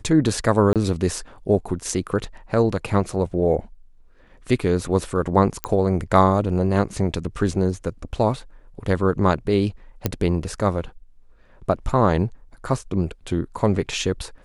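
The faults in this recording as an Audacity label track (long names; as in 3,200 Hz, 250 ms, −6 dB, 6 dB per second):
0.730000	0.760000	drop-out 27 ms
5.640000	5.640000	click −7 dBFS
10.060000	10.060000	click −6 dBFS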